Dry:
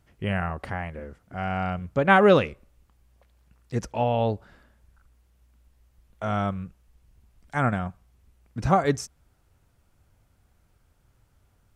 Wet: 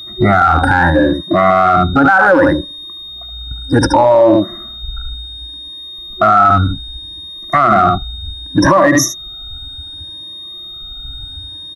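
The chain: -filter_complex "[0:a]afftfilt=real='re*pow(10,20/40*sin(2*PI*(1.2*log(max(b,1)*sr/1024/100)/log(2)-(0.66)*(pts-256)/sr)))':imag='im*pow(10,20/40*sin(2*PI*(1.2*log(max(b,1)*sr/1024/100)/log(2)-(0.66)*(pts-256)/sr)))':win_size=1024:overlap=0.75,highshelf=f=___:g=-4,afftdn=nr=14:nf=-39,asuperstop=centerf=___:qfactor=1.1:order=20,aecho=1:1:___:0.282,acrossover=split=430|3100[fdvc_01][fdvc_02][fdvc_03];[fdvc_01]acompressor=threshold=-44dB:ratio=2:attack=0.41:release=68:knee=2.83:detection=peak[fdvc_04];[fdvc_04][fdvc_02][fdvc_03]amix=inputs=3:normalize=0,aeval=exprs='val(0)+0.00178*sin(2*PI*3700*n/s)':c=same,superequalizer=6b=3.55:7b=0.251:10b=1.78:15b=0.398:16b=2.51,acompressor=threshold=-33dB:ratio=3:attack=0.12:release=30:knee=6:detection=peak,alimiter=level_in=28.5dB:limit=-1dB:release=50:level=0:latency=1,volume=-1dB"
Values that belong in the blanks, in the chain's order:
5000, 3200, 73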